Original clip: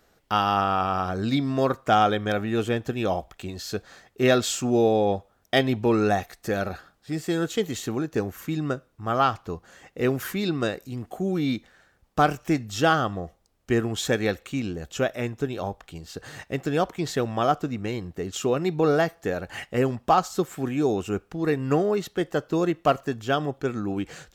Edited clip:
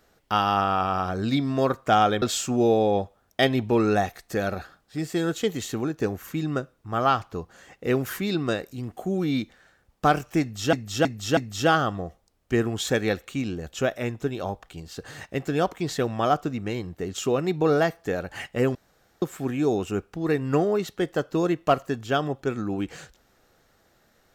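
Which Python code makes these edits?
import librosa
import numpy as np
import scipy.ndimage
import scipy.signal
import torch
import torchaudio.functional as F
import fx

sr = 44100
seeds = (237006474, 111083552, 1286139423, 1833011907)

y = fx.edit(x, sr, fx.cut(start_s=2.22, length_s=2.14),
    fx.repeat(start_s=12.55, length_s=0.32, count=4),
    fx.room_tone_fill(start_s=19.93, length_s=0.47), tone=tone)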